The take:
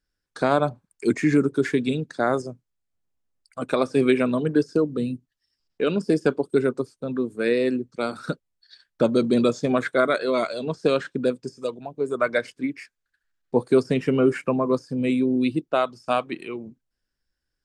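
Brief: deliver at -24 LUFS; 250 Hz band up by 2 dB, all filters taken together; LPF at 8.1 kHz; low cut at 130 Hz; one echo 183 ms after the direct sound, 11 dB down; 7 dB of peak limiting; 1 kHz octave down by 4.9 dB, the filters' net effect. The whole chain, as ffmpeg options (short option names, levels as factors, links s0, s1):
-af "highpass=130,lowpass=8100,equalizer=f=250:t=o:g=3,equalizer=f=1000:t=o:g=-7.5,alimiter=limit=0.224:level=0:latency=1,aecho=1:1:183:0.282,volume=1.12"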